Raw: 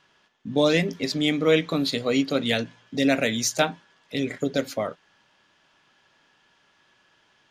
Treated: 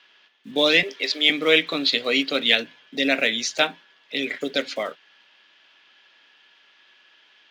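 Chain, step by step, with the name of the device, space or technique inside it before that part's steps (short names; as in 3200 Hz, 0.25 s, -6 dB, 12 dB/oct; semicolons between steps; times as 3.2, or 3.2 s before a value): early digital voice recorder (BPF 250–3900 Hz; block floating point 7-bit); weighting filter D; 0.83–1.3 HPF 340 Hz 24 dB/oct; 2.55–4.19 bell 3600 Hz -3 dB 3 oct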